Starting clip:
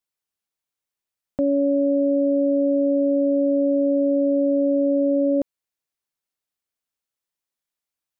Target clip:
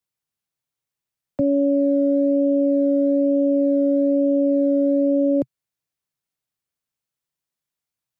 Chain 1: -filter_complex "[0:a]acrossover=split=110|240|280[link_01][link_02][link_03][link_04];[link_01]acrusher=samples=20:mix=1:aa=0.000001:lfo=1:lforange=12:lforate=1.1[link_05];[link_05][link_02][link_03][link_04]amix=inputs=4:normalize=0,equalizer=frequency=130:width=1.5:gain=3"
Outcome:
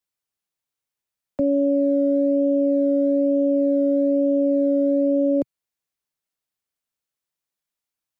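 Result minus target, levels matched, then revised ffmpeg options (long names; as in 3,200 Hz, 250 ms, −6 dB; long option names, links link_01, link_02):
125 Hz band −4.5 dB
-filter_complex "[0:a]acrossover=split=110|240|280[link_01][link_02][link_03][link_04];[link_01]acrusher=samples=20:mix=1:aa=0.000001:lfo=1:lforange=12:lforate=1.1[link_05];[link_05][link_02][link_03][link_04]amix=inputs=4:normalize=0,equalizer=frequency=130:width=1.5:gain=11.5"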